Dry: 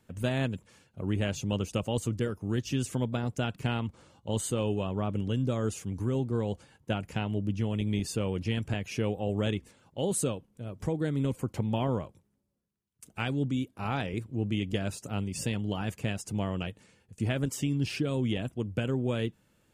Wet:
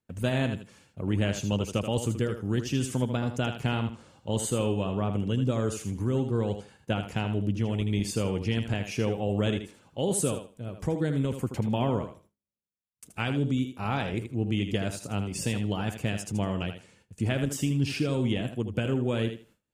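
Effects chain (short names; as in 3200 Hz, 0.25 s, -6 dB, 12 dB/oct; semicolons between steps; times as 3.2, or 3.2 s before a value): thinning echo 79 ms, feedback 21%, high-pass 170 Hz, level -8 dB; gate with hold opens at -51 dBFS; gain +2 dB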